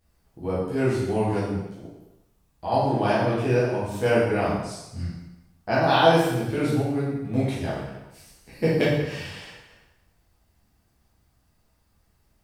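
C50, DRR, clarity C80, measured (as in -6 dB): 0.0 dB, -10.0 dB, 3.5 dB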